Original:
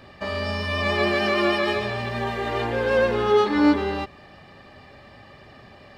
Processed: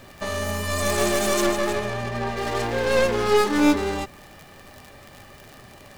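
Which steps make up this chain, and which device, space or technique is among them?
record under a worn stylus (tracing distortion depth 0.38 ms; crackle 78/s -32 dBFS; pink noise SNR 29 dB); 1.46–2.37 high shelf 3900 Hz -9 dB

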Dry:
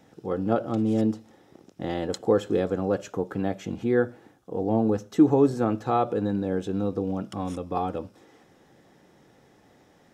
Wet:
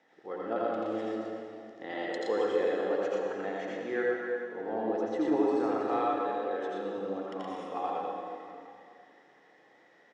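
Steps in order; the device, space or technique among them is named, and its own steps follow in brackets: 6.21–6.89 HPF 480 Hz -> 150 Hz 24 dB/oct; station announcement (BPF 420–4300 Hz; bell 1900 Hz +11 dB 0.22 oct; loudspeakers at several distances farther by 29 m -1 dB, 41 m -3 dB; reverb RT60 2.6 s, pre-delay 69 ms, DRR 1.5 dB); gain -8 dB

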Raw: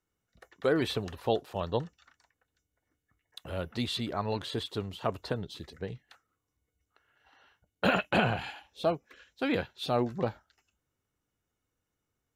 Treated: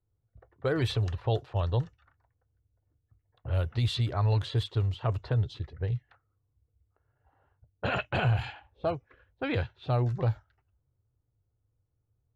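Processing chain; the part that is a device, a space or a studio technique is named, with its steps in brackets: car stereo with a boomy subwoofer (resonant low shelf 150 Hz +8.5 dB, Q 3; limiter -18.5 dBFS, peak gain reduction 6.5 dB); low-pass opened by the level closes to 730 Hz, open at -22.5 dBFS

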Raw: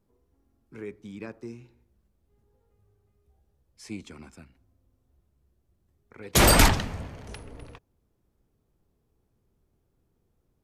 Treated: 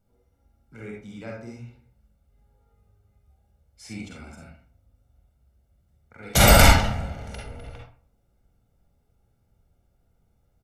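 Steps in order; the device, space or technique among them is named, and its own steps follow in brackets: microphone above a desk (comb 1.4 ms, depth 64%; reverb RT60 0.50 s, pre-delay 40 ms, DRR -2.5 dB); gain -1 dB

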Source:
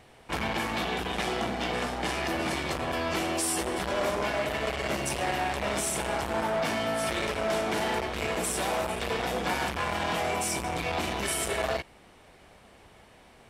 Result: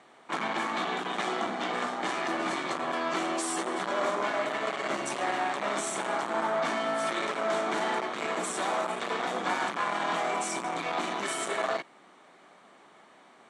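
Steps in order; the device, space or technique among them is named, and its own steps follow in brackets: television speaker (speaker cabinet 200–8100 Hz, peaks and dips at 220 Hz -3 dB, 480 Hz -5 dB, 1200 Hz +6 dB, 2700 Hz -6 dB, 5100 Hz -8 dB)

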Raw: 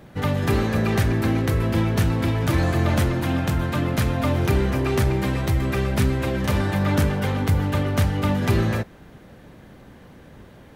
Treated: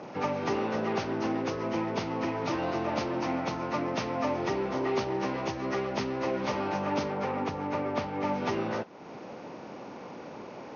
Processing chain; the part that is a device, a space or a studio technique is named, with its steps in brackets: 7.12–8.26 high shelf 6600 Hz -7.5 dB; hearing aid with frequency lowering (nonlinear frequency compression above 1200 Hz 1.5:1; compressor 2:1, threshold -39 dBFS, peak gain reduction 13 dB; speaker cabinet 310–5700 Hz, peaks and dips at 900 Hz +4 dB, 1600 Hz -9 dB, 3600 Hz -3 dB); gain +8 dB

